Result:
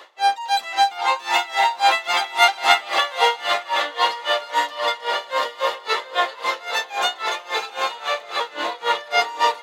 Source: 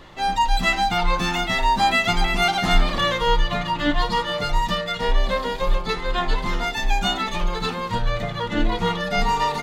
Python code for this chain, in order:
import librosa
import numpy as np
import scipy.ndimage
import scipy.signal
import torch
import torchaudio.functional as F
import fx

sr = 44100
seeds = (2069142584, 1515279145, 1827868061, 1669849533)

y = scipy.signal.sosfilt(scipy.signal.butter(4, 480.0, 'highpass', fs=sr, output='sos'), x)
y = fx.echo_diffused(y, sr, ms=795, feedback_pct=41, wet_db=-5.0)
y = y * 10.0 ** (-20 * (0.5 - 0.5 * np.cos(2.0 * np.pi * 3.7 * np.arange(len(y)) / sr)) / 20.0)
y = y * librosa.db_to_amplitude(6.5)